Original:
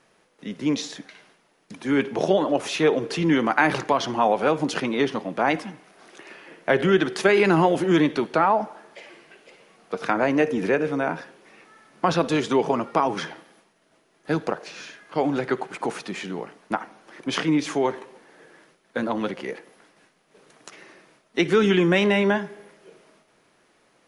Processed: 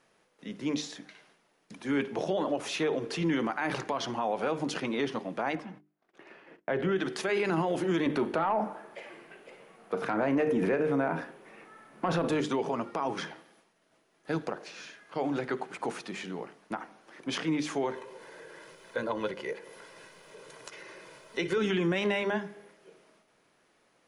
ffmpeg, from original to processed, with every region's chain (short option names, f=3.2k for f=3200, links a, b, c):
-filter_complex "[0:a]asettb=1/sr,asplit=3[a][b][c];[a]atrim=end=5.554[d];[b]atrim=start=5.55:end=6.96,asetpts=PTS-STARTPTS,afade=t=in:d=0.004:c=qsin,afade=t=out:st=1.406:d=0.004:c=qsin,agate=range=-28dB:threshold=-48dB:ratio=16:release=100:detection=peak,lowpass=f=1.7k:p=1[e];[c]atrim=start=6.956[f];[d][e]acrossfade=d=0.004:c1=hsin:c2=qsin[g];[g][f]acrossfade=d=0.004:c1=qsin:c2=hsin,asettb=1/sr,asplit=3[h][i][j];[h]atrim=end=8.064[k];[i]atrim=start=8.06:end=12.41,asetpts=PTS-STARTPTS,afade=t=in:d=0.004:c=qsin,afade=t=out:st=4.346:d=0.004:c=qsin,aeval=exprs='0.501*sin(PI/2*1.41*val(0)/0.501)':c=same,equalizer=f=5.2k:t=o:w=1.8:g=-10,asplit=2[l][m];[m]adelay=37,volume=-14dB[n];[l][n]amix=inputs=2:normalize=0,atrim=end_sample=191835[o];[j]atrim=start=12.406[p];[k][o]acrossfade=d=0.004:c1=hsin:c2=qsin[q];[q][p]acrossfade=d=0.004:c1=qsin:c2=hsin,asettb=1/sr,asplit=3[r][s][t];[r]atrim=end=17.924[u];[s]atrim=start=17.92:end=21.58,asetpts=PTS-STARTPTS,afade=t=in:d=0.004:c=qsin,afade=t=out:st=3.656:d=0.004:c=qsin,aecho=1:1:2:0.58,atrim=end_sample=161406,acompressor=mode=upward:threshold=-32dB:ratio=2.5:attack=3.2:release=140:knee=2.83:detection=peak[v];[t]atrim=start=21.576[w];[u][v]acrossfade=d=0.004:c1=hsin:c2=qsin[x];[x][w]acrossfade=d=0.004:c1=qsin:c2=hsin,bandreject=f=50:t=h:w=6,bandreject=f=100:t=h:w=6,bandreject=f=150:t=h:w=6,bandreject=f=200:t=h:w=6,bandreject=f=250:t=h:w=6,bandreject=f=300:t=h:w=6,bandreject=f=350:t=h:w=6,bandreject=f=400:t=h:w=6,alimiter=limit=-14dB:level=0:latency=1:release=57,volume=-6dB"